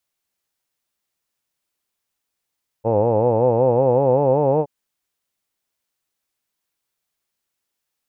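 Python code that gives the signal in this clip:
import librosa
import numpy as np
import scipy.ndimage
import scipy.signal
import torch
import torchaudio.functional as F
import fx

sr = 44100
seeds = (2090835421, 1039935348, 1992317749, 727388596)

y = fx.formant_vowel(sr, seeds[0], length_s=1.82, hz=107.0, glide_st=5.5, vibrato_hz=5.3, vibrato_st=1.25, f1_hz=510.0, f2_hz=870.0, f3_hz=2600.0)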